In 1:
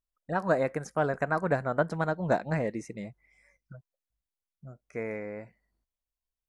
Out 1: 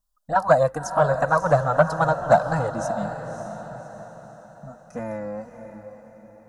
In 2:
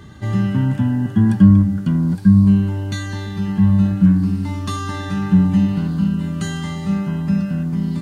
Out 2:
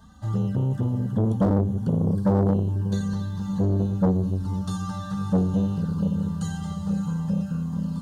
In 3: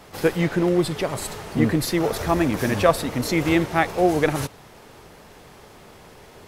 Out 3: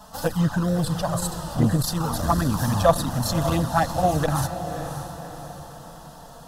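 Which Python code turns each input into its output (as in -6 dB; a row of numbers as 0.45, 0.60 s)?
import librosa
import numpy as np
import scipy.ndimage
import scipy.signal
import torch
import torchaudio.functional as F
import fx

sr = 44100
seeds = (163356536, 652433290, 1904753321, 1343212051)

y = fx.env_flanger(x, sr, rest_ms=4.9, full_db=-13.5)
y = fx.echo_diffused(y, sr, ms=580, feedback_pct=45, wet_db=-9.5)
y = 10.0 ** (-6.0 / 20.0) * (np.abs((y / 10.0 ** (-6.0 / 20.0) + 3.0) % 4.0 - 2.0) - 1.0)
y = fx.fixed_phaser(y, sr, hz=920.0, stages=4)
y = fx.transformer_sat(y, sr, knee_hz=330.0)
y = y * 10.0 ** (-24 / 20.0) / np.sqrt(np.mean(np.square(y)))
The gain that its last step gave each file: +15.0, -2.5, +6.5 dB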